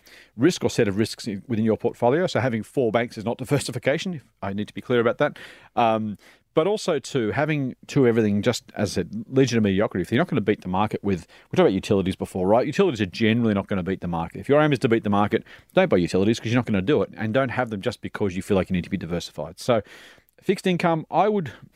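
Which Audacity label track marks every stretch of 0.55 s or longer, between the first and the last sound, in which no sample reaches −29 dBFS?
19.800000	20.490000	silence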